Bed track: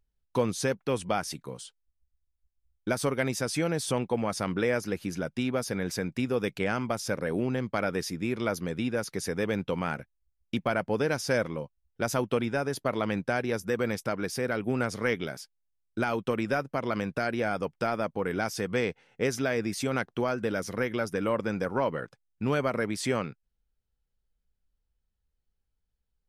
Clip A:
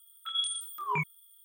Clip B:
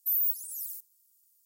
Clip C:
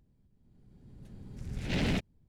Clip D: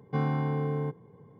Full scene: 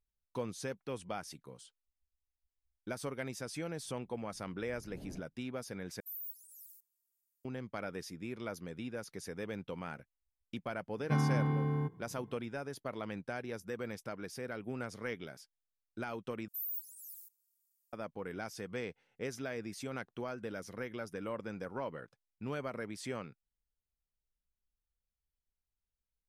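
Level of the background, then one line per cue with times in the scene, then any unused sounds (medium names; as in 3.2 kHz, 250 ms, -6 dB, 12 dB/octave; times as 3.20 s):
bed track -12 dB
3.21 s: add C -17.5 dB + Chebyshev low-pass 610 Hz
6.00 s: replace with B -17 dB
10.97 s: add D -1.5 dB + peaking EQ 540 Hz -13.5 dB 0.51 oct
16.48 s: replace with B -12.5 dB
not used: A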